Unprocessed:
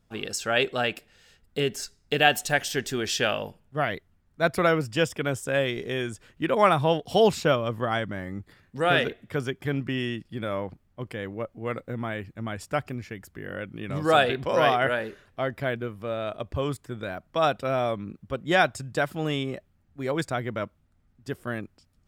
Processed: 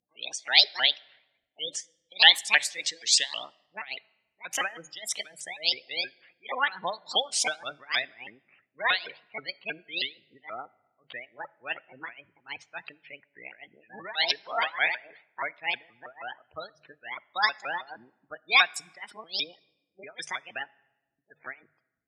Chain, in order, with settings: sawtooth pitch modulation +7.5 st, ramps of 159 ms; level-controlled noise filter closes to 1.2 kHz, open at -21.5 dBFS; spectral gate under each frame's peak -20 dB strong; frequency weighting ITU-R 468; de-esser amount 30%; tilt shelf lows -4 dB, about 1.3 kHz; hum notches 50/100/150 Hz; tremolo 3.5 Hz, depth 93%; on a send: reverberation RT60 1.2 s, pre-delay 6 ms, DRR 22 dB; on the sum: trim -1.5 dB

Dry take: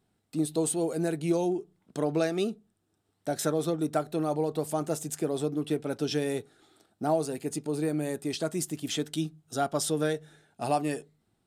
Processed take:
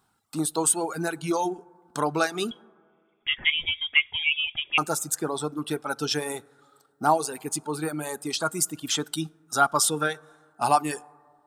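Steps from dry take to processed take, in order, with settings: treble shelf 2.5 kHz +10.5 dB; short-mantissa float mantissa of 8-bit; high-order bell 1.1 kHz +13 dB 1.1 oct; 2.51–4.78 s: frequency inversion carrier 3.5 kHz; plate-style reverb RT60 2.1 s, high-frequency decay 0.25×, DRR 14 dB; reverb removal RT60 1.7 s

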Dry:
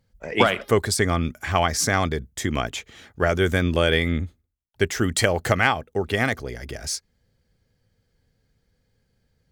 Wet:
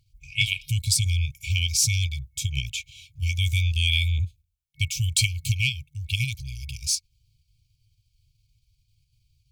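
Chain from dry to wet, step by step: FFT band-reject 150–2200 Hz; in parallel at -0.5 dB: level held to a coarse grid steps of 14 dB; on the sum: trim -1 dB

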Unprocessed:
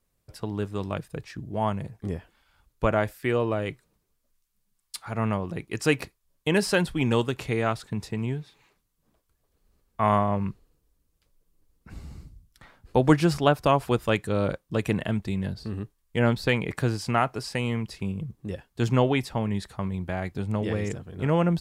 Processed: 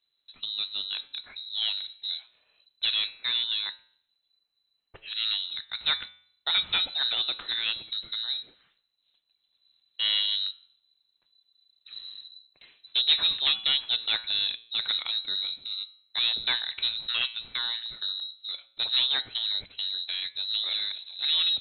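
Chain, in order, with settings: de-hum 114.9 Hz, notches 37; one-sided clip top -18 dBFS; frequency inversion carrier 4 kHz; trim -3 dB

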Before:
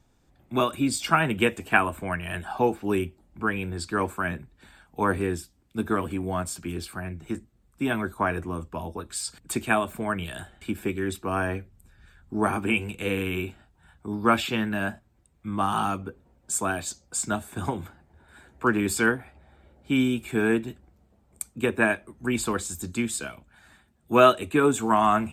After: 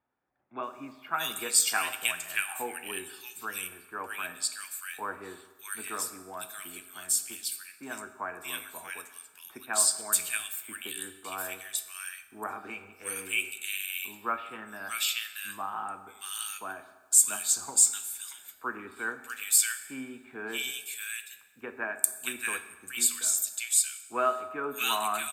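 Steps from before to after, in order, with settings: differentiator; bands offset in time lows, highs 630 ms, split 1.7 kHz; on a send at -9 dB: reverberation RT60 1.3 s, pre-delay 4 ms; on the sum: trim +8 dB

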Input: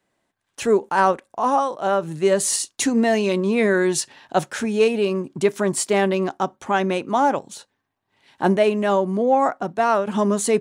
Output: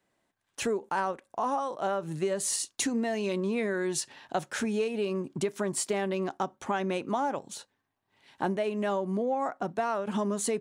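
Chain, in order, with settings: compression, threshold -23 dBFS, peak gain reduction 10.5 dB; trim -3.5 dB

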